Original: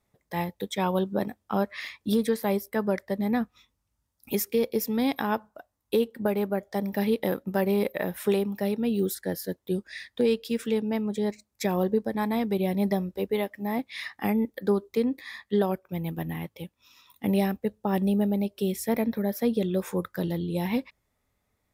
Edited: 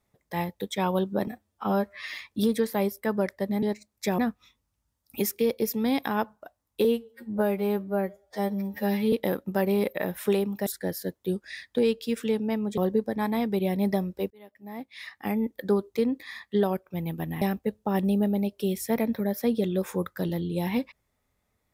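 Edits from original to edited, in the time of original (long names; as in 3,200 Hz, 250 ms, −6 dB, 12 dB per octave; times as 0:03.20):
0:01.27–0:01.88: time-stretch 1.5×
0:05.98–0:07.12: time-stretch 2×
0:08.66–0:09.09: remove
0:11.20–0:11.76: move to 0:03.32
0:13.29–0:14.64: fade in
0:16.40–0:17.40: remove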